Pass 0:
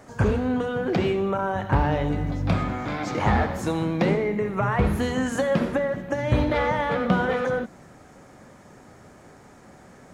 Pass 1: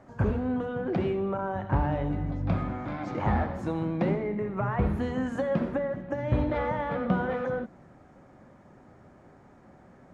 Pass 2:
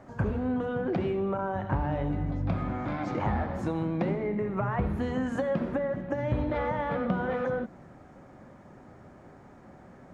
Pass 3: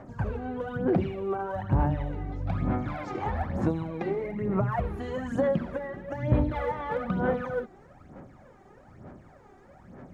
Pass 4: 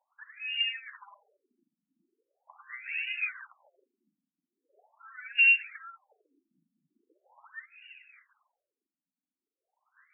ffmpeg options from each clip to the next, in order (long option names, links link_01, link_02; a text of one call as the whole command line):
ffmpeg -i in.wav -af "lowpass=frequency=1200:poles=1,bandreject=frequency=450:width=12,volume=-4dB" out.wav
ffmpeg -i in.wav -af "acompressor=threshold=-30dB:ratio=2.5,volume=3dB" out.wav
ffmpeg -i in.wav -af "aphaser=in_gain=1:out_gain=1:delay=2.6:decay=0.66:speed=1.1:type=sinusoidal,volume=-3.5dB" out.wav
ffmpeg -i in.wav -af "lowpass=frequency=2800:width_type=q:width=0.5098,lowpass=frequency=2800:width_type=q:width=0.6013,lowpass=frequency=2800:width_type=q:width=0.9,lowpass=frequency=2800:width_type=q:width=2.563,afreqshift=-3300,aexciter=amount=1.1:drive=9.2:freq=2600,afftfilt=real='re*between(b*sr/1024,210*pow(2100/210,0.5+0.5*sin(2*PI*0.41*pts/sr))/1.41,210*pow(2100/210,0.5+0.5*sin(2*PI*0.41*pts/sr))*1.41)':imag='im*between(b*sr/1024,210*pow(2100/210,0.5+0.5*sin(2*PI*0.41*pts/sr))/1.41,210*pow(2100/210,0.5+0.5*sin(2*PI*0.41*pts/sr))*1.41)':win_size=1024:overlap=0.75" out.wav